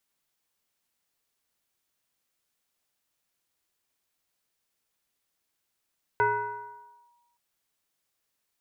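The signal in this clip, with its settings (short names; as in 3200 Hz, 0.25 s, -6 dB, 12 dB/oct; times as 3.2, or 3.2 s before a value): FM tone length 1.17 s, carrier 954 Hz, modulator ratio 0.56, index 1.1, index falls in 0.93 s linear, decay 1.27 s, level -18.5 dB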